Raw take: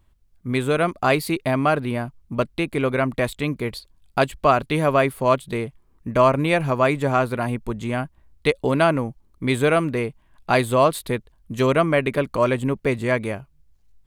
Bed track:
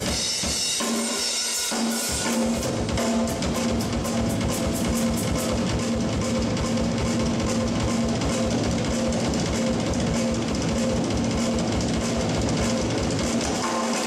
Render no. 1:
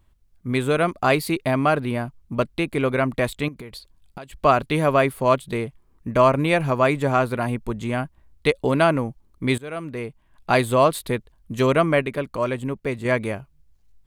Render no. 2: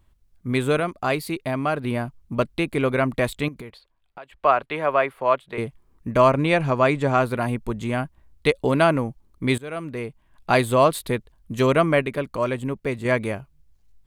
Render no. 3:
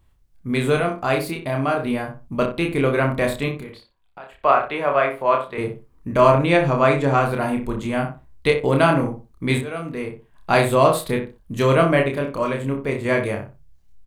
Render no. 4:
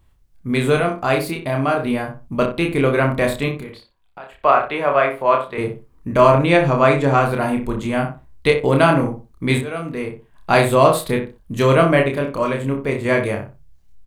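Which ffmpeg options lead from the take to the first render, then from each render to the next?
-filter_complex "[0:a]asettb=1/sr,asplit=3[a][b][c];[a]atrim=end=3.484[d];[b]atrim=start=3.48:end=4.36,asetpts=PTS-STARTPTS,afade=t=in:d=0.004:c=qsin,afade=t=out:st=0.876:d=0.004:c=qsin,acompressor=threshold=-33dB:ratio=12:attack=3.2:release=140:knee=1:detection=peak[e];[c]atrim=start=4.356[f];[d][e]acrossfade=d=0.004:c1=hsin:c2=qsin[g];[g][f]acrossfade=d=0.004:c1=qsin:c2=hsin,asplit=4[h][i][j][k];[h]atrim=end=9.58,asetpts=PTS-STARTPTS,afade=t=out:st=9.576:d=0.004:c=hsin:silence=0.0668344[l];[i]atrim=start=9.58:end=12.022,asetpts=PTS-STARTPTS,afade=t=in:d=0.92:silence=0.0668344[m];[j]atrim=start=12.018:end=13.052,asetpts=PTS-STARTPTS,volume=-4.5dB[n];[k]atrim=start=13.048[o];[l][m]concat=n=2:v=0:a=1[p];[p][n]acrossfade=d=0.004:c1=hsin:c2=hsin[q];[q][o]acrossfade=d=0.004:c1=hsin:c2=hsin"
-filter_complex "[0:a]asettb=1/sr,asplit=3[a][b][c];[a]atrim=end=3.704[d];[b]atrim=start=3.7:end=5.58,asetpts=PTS-STARTPTS,afade=t=in:d=0.004:c=qsin,afade=t=out:st=1.876:d=0.004:c=qsin,acrossover=split=450 3100:gain=0.178 1 0.126[e][f][g];[e][f][g]amix=inputs=3:normalize=0[h];[c]atrim=start=5.576[i];[d][h]acrossfade=d=0.004:c1=hsin:c2=qsin[j];[j][i]acrossfade=d=0.004:c1=qsin:c2=hsin,asettb=1/sr,asplit=3[k][l][m];[k]atrim=end=6.334[n];[l]atrim=start=6.33:end=7.18,asetpts=PTS-STARTPTS,afade=t=in:d=0.004:c=qsin,afade=t=out:st=0.846:d=0.004:c=qsin,lowpass=8k[o];[m]atrim=start=7.176[p];[n][o]acrossfade=d=0.004:c1=hsin:c2=qsin[q];[q][p]acrossfade=d=0.004:c1=qsin:c2=hsin,asplit=3[r][s][t];[r]atrim=end=0.802[u];[s]atrim=start=0.798:end=1.842,asetpts=PTS-STARTPTS,volume=-4.5dB[v];[t]atrim=start=1.838[w];[u][v]acrossfade=d=0.004:c1=hsin:c2=hsin[x];[x][w]acrossfade=d=0.004:c1=hsin:c2=hsin"
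-filter_complex "[0:a]asplit=2[a][b];[b]adelay=29,volume=-3.5dB[c];[a][c]amix=inputs=2:normalize=0,asplit=2[d][e];[e]adelay=61,lowpass=f=1.6k:p=1,volume=-6dB,asplit=2[f][g];[g]adelay=61,lowpass=f=1.6k:p=1,volume=0.26,asplit=2[h][i];[i]adelay=61,lowpass=f=1.6k:p=1,volume=0.26[j];[d][f][h][j]amix=inputs=4:normalize=0"
-af "volume=2.5dB,alimiter=limit=-1dB:level=0:latency=1"

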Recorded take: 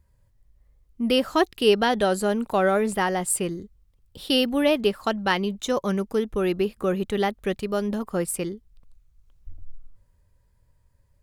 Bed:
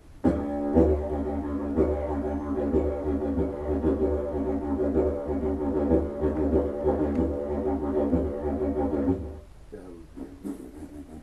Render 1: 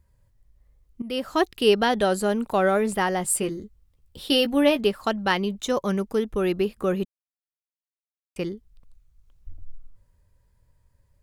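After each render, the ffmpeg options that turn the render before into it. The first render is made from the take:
-filter_complex "[0:a]asettb=1/sr,asplit=3[a][b][c];[a]atrim=end=3.234[d];[b]atrim=start=3.23:end=4.79,asetpts=PTS-STARTPTS,afade=t=in:d=0.004:c=qsin,afade=t=out:st=1.556:d=0.004:c=qsin,asplit=2[e][f];[f]adelay=14,volume=-8dB[g];[e][g]amix=inputs=2:normalize=0,atrim=end_sample=68796[h];[c]atrim=start=4.786[i];[d][h]acrossfade=d=0.004:c1=hsin:c2=qsin[j];[j][i]acrossfade=d=0.004:c1=qsin:c2=hsin,asplit=4[k][l][m][n];[k]atrim=end=1.02,asetpts=PTS-STARTPTS,afade=t=out:st=1.016:d=0.004:c=hsin:silence=0.16788[o];[l]atrim=start=1.02:end=7.05,asetpts=PTS-STARTPTS,afade=t=in:d=0.45:silence=0.16788,afade=t=out:st=6.026:d=0.004:c=hsin[p];[m]atrim=start=7.05:end=8.36,asetpts=PTS-STARTPTS,volume=0[q];[n]atrim=start=8.36,asetpts=PTS-STARTPTS,afade=t=in:d=0.004:c=hsin[r];[o][p][q][r]concat=n=4:v=0:a=1"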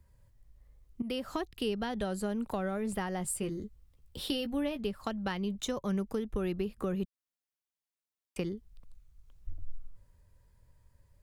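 -filter_complex "[0:a]acrossover=split=160[a][b];[b]acompressor=threshold=-33dB:ratio=8[c];[a][c]amix=inputs=2:normalize=0"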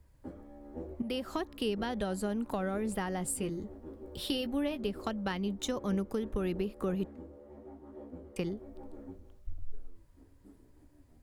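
-filter_complex "[1:a]volume=-22.5dB[a];[0:a][a]amix=inputs=2:normalize=0"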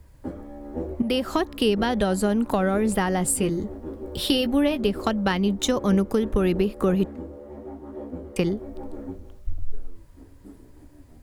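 -af "volume=11.5dB"

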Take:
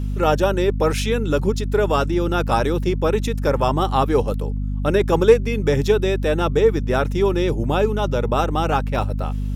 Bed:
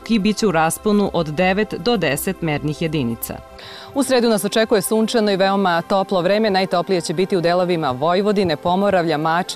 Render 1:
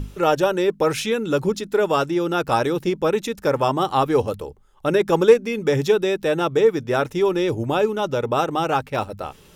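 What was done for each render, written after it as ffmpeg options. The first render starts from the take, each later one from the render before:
-af "bandreject=f=50:t=h:w=6,bandreject=f=100:t=h:w=6,bandreject=f=150:t=h:w=6,bandreject=f=200:t=h:w=6,bandreject=f=250:t=h:w=6"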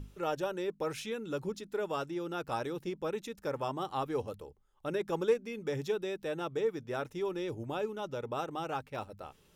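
-af "volume=-15.5dB"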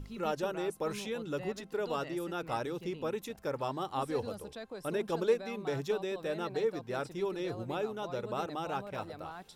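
-filter_complex "[1:a]volume=-28.5dB[a];[0:a][a]amix=inputs=2:normalize=0"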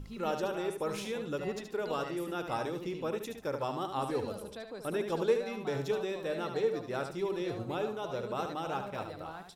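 -af "aecho=1:1:74|148|222:0.422|0.101|0.0243"

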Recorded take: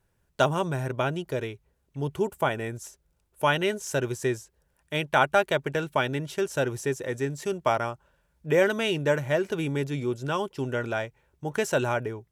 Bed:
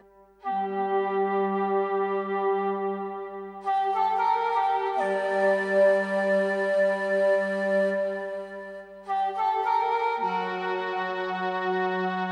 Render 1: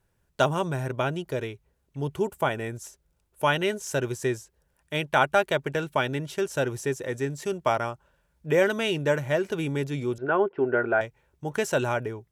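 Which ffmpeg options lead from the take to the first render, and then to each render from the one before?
-filter_complex "[0:a]asettb=1/sr,asplit=3[a][b][c];[a]atrim=end=10.184[d];[b]atrim=start=10.18:end=11.01,asetpts=PTS-STARTPTS,afade=t=in:d=0.004:c=qsin,afade=t=out:st=0.826:d=0.004:c=qsin,highpass=120,equalizer=f=140:t=q:w=4:g=-7,equalizer=f=390:t=q:w=4:g=10,equalizer=f=700:t=q:w=4:g=8,equalizer=f=1.5k:t=q:w=4:g=8,lowpass=f=2.2k:w=0.5412,lowpass=f=2.2k:w=1.3066[e];[c]atrim=start=11.006[f];[d][e]acrossfade=d=0.004:c1=hsin:c2=qsin[g];[g][f]acrossfade=d=0.004:c1=qsin:c2=hsin"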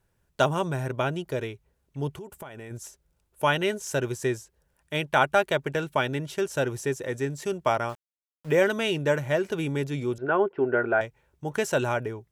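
-filter_complex "[0:a]asplit=3[a][b][c];[a]afade=t=out:st=2.11:d=0.02[d];[b]acompressor=threshold=-37dB:ratio=8:attack=3.2:release=140:knee=1:detection=peak,afade=t=in:st=2.11:d=0.02,afade=t=out:st=2.7:d=0.02[e];[c]afade=t=in:st=2.7:d=0.02[f];[d][e][f]amix=inputs=3:normalize=0,asettb=1/sr,asplit=3[g][h][i];[g]atrim=end=7.894[j];[h]atrim=start=7.89:end=8.64,asetpts=PTS-STARTPTS,afade=t=in:d=0.004:c=qsin,afade=t=out:st=0.746:d=0.004:c=qsin,aeval=exprs='val(0)*gte(abs(val(0)),0.00708)':c=same[k];[i]atrim=start=8.636[l];[j][k]acrossfade=d=0.004:c1=hsin:c2=qsin[m];[m][l]acrossfade=d=0.004:c1=qsin:c2=hsin"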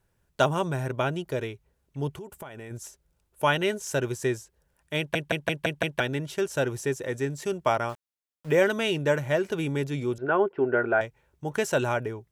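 -filter_complex "[0:a]asplit=7[a][b][c][d][e][f][g];[a]atrim=end=5.152[h];[b]atrim=start=4.978:end=5.152[i];[c]atrim=start=4.978:end=5.152[j];[d]atrim=start=4.978:end=5.152[k];[e]atrim=start=4.978:end=5.152[l];[f]atrim=start=4.978:end=5.152[m];[g]atrim=start=5.998[n];[h][i]acrossfade=d=0.004:c1=hsin:c2=hsin[o];[o][j]acrossfade=d=0.004:c1=hsin:c2=hsin[p];[p][k]acrossfade=d=0.004:c1=hsin:c2=hsin[q];[q][l]acrossfade=d=0.004:c1=hsin:c2=hsin[r];[r][m]acrossfade=d=0.004:c1=hsin:c2=hsin[s];[s][n]acrossfade=d=0.004:c1=hsin:c2=hsin"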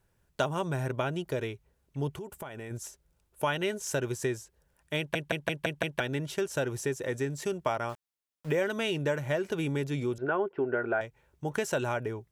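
-af "acompressor=threshold=-28dB:ratio=2.5"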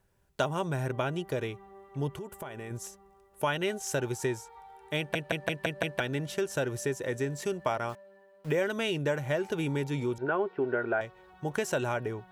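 -filter_complex "[1:a]volume=-26.5dB[a];[0:a][a]amix=inputs=2:normalize=0"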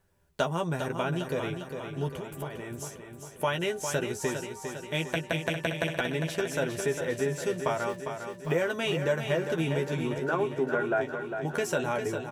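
-filter_complex "[0:a]asplit=2[a][b];[b]adelay=12,volume=-5.5dB[c];[a][c]amix=inputs=2:normalize=0,asplit=2[d][e];[e]aecho=0:1:403|806|1209|1612|2015|2418|2821:0.422|0.245|0.142|0.0823|0.0477|0.0277|0.0161[f];[d][f]amix=inputs=2:normalize=0"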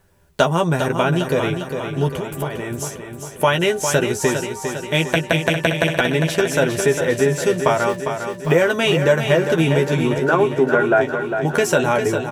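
-af "volume=12dB,alimiter=limit=-1dB:level=0:latency=1"

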